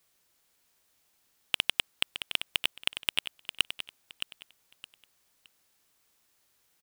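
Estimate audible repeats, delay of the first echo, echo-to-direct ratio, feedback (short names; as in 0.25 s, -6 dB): 3, 0.617 s, -9.0 dB, 25%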